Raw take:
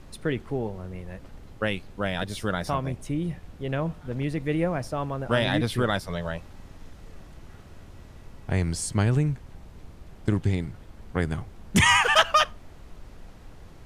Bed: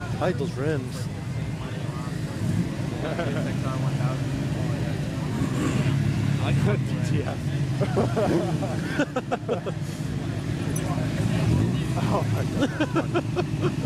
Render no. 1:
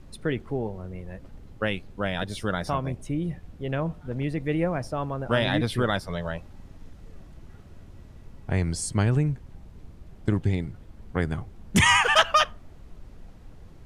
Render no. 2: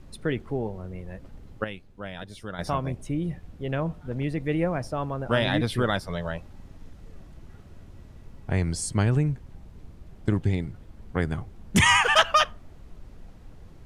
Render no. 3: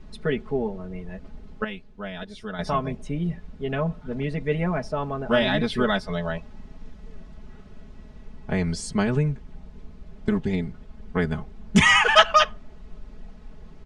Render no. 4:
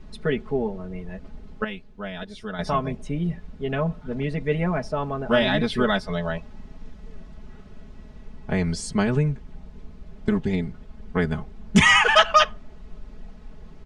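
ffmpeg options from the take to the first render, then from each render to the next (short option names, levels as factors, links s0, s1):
-af "afftdn=nr=6:nf=-47"
-filter_complex "[0:a]asplit=3[s0][s1][s2];[s0]atrim=end=1.642[s3];[s1]atrim=start=1.638:end=2.592,asetpts=PTS-STARTPTS,volume=0.355[s4];[s2]atrim=start=2.588[s5];[s3][s4]acrossfade=d=0.004:c1=hsin:c2=hsin[s6];[s6][s5]acrossfade=d=0.004:c1=hsin:c2=hsin"
-af "lowpass=5900,aecho=1:1:4.7:0.94"
-af "volume=1.12,alimiter=limit=0.708:level=0:latency=1"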